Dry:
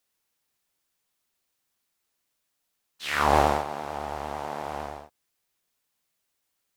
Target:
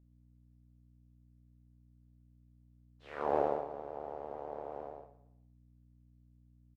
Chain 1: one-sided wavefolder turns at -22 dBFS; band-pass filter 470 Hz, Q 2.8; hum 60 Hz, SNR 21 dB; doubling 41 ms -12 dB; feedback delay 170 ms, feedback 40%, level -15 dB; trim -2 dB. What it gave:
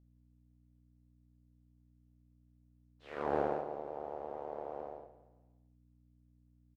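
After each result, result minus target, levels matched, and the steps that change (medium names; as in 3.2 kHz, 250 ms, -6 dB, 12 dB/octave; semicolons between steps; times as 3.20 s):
echo 54 ms late; one-sided wavefolder: distortion +11 dB
change: feedback delay 116 ms, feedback 40%, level -15 dB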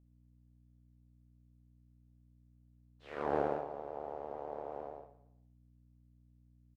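one-sided wavefolder: distortion +11 dB
change: one-sided wavefolder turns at -14 dBFS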